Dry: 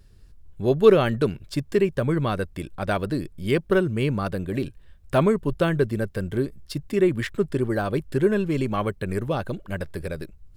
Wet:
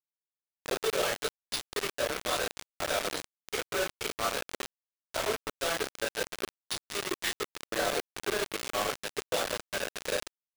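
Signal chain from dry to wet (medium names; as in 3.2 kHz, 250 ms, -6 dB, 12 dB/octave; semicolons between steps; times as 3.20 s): median filter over 3 samples; peaking EQ 3.8 kHz +13.5 dB 0.56 oct; compression 4:1, threshold -34 dBFS, peak gain reduction 21 dB; peak limiter -30 dBFS, peak gain reduction 10.5 dB; high-pass 440 Hz 24 dB/octave; simulated room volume 77 m³, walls mixed, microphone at 2.6 m; careless resampling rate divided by 3×, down none, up hold; bit crusher 5-bit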